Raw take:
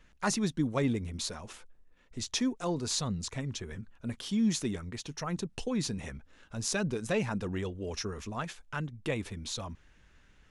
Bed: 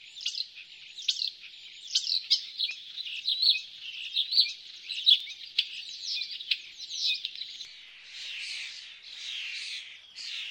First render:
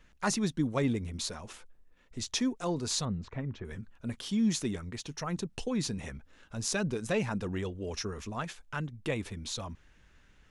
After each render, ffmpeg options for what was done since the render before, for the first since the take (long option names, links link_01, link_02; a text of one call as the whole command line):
ffmpeg -i in.wav -filter_complex "[0:a]asettb=1/sr,asplit=3[link_01][link_02][link_03];[link_01]atrim=end=3.054[link_04];[link_02]atrim=start=3.05:end=3.65,asetpts=PTS-STARTPTS,afade=type=in:duration=0.004:curve=qsin,afade=type=out:start_time=0.596:duration=0.004:curve=qsin,lowpass=1800[link_05];[link_03]atrim=start=3.646[link_06];[link_04][link_05]acrossfade=duration=0.004:curve1=hsin:curve2=qsin[link_07];[link_07][link_06]acrossfade=duration=0.004:curve1=qsin:curve2=hsin" out.wav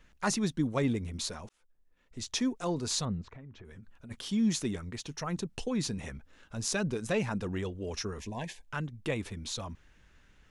ffmpeg -i in.wav -filter_complex "[0:a]asplit=3[link_01][link_02][link_03];[link_01]afade=type=out:start_time=3.21:duration=0.02[link_04];[link_02]acompressor=threshold=-46dB:ratio=5:attack=3.2:release=140:knee=1:detection=peak,afade=type=in:start_time=3.21:duration=0.02,afade=type=out:start_time=4.1:duration=0.02[link_05];[link_03]afade=type=in:start_time=4.1:duration=0.02[link_06];[link_04][link_05][link_06]amix=inputs=3:normalize=0,asettb=1/sr,asplit=3[link_07][link_08][link_09];[link_07]atrim=end=8.194[link_10];[link_08]atrim=start=8.19:end=8.66,asetpts=PTS-STARTPTS,afade=type=in:duration=0.004:curve=qsin,afade=type=out:start_time=0.466:duration=0.004:curve=qsin,asuperstop=centerf=1300:order=8:qfactor=2.3[link_11];[link_09]atrim=start=8.656[link_12];[link_10][link_11]acrossfade=duration=0.004:curve1=hsin:curve2=qsin[link_13];[link_13][link_12]acrossfade=duration=0.004:curve1=qsin:curve2=hsin,asplit=2[link_14][link_15];[link_14]atrim=end=1.49,asetpts=PTS-STARTPTS,afade=type=out:start_time=1.486:duration=0.004:curve=hsin[link_16];[link_15]atrim=start=1.49,asetpts=PTS-STARTPTS,afade=type=in:duration=0.96[link_17];[link_16][link_17]concat=n=2:v=0:a=1" out.wav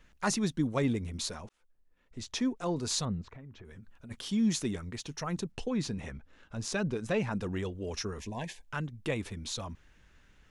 ffmpeg -i in.wav -filter_complex "[0:a]asettb=1/sr,asplit=3[link_01][link_02][link_03];[link_01]atrim=end=1.424[link_04];[link_02]atrim=start=1.42:end=2.76,asetpts=PTS-STARTPTS,afade=type=in:duration=0.004:curve=qsin,afade=type=out:start_time=1.336:duration=0.004:curve=qsin,highshelf=frequency=4400:gain=-7[link_05];[link_03]atrim=start=2.756[link_06];[link_04][link_05]acrossfade=duration=0.004:curve1=hsin:curve2=qsin[link_07];[link_07][link_06]acrossfade=duration=0.004:curve1=qsin:curve2=hsin,asettb=1/sr,asplit=3[link_08][link_09][link_10];[link_08]atrim=end=5.524[link_11];[link_09]atrim=start=5.52:end=7.33,asetpts=PTS-STARTPTS,afade=type=in:duration=0.004:curve=qsin,afade=type=out:start_time=1.806:duration=0.004:curve=qsin,lowpass=frequency=3900:poles=1[link_12];[link_10]atrim=start=7.326[link_13];[link_11][link_12]acrossfade=duration=0.004:curve1=hsin:curve2=qsin[link_14];[link_14][link_13]acrossfade=duration=0.004:curve1=qsin:curve2=hsin" out.wav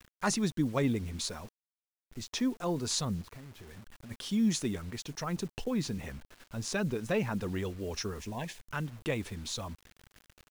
ffmpeg -i in.wav -af "acrusher=bits=8:mix=0:aa=0.000001" out.wav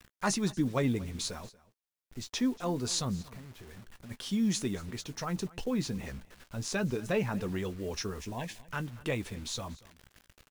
ffmpeg -i in.wav -filter_complex "[0:a]asplit=2[link_01][link_02];[link_02]adelay=16,volume=-12.5dB[link_03];[link_01][link_03]amix=inputs=2:normalize=0,aecho=1:1:235:0.0891" out.wav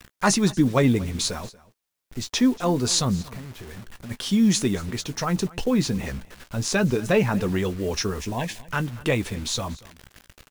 ffmpeg -i in.wav -af "volume=10dB" out.wav